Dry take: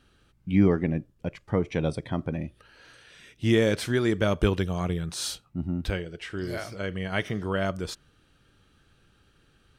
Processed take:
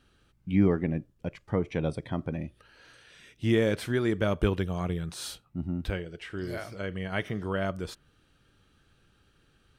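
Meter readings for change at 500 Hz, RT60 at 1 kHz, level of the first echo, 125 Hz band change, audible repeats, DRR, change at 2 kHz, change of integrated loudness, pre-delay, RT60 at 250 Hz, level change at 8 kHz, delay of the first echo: -2.5 dB, none, none, -2.5 dB, none, none, -3.0 dB, -2.5 dB, none, none, -7.0 dB, none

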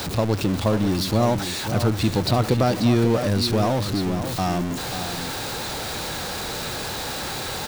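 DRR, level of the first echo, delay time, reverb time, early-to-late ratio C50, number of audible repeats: none, -9.5 dB, 0.538 s, none, none, 1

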